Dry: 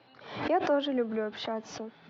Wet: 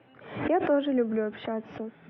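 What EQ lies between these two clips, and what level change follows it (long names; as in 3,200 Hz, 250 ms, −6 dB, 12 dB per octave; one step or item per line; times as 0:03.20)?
Savitzky-Golay smoothing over 25 samples
high-frequency loss of the air 290 metres
parametric band 950 Hz −6.5 dB 1.1 octaves
+5.5 dB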